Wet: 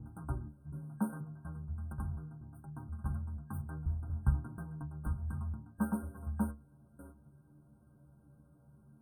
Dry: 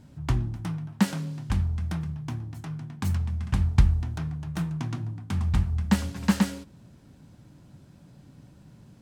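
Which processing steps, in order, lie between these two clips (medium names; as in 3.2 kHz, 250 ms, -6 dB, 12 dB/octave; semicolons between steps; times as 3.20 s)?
slices played last to first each 241 ms, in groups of 3; inharmonic resonator 70 Hz, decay 0.3 s, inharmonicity 0.008; FFT band-reject 1.6–8.5 kHz; trim -2.5 dB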